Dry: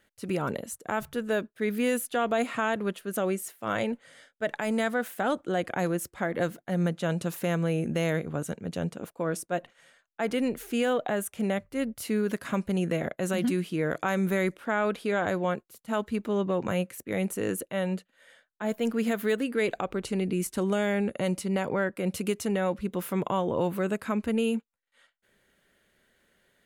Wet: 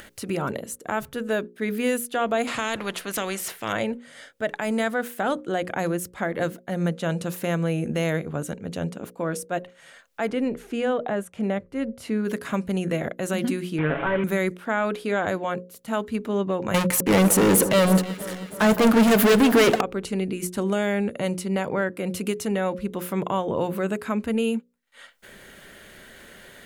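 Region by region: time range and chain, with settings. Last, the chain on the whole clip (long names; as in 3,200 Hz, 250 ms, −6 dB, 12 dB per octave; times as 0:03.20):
0:02.47–0:03.73: high-shelf EQ 7,100 Hz −11.5 dB + every bin compressed towards the loudest bin 2 to 1
0:10.30–0:12.25: low-pass filter 10,000 Hz + high-shelf EQ 2,600 Hz −9.5 dB
0:13.78–0:14.24: linear delta modulator 16 kbit/s, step −29.5 dBFS + high-frequency loss of the air 160 metres + comb filter 7.2 ms, depth 96%
0:16.74–0:19.81: leveller curve on the samples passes 5 + delay that swaps between a low-pass and a high-pass 161 ms, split 1,500 Hz, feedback 73%, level −12 dB
whole clip: upward compression, threshold −33 dBFS; mains-hum notches 60/120/180/240/300/360/420/480/540 Hz; level +3 dB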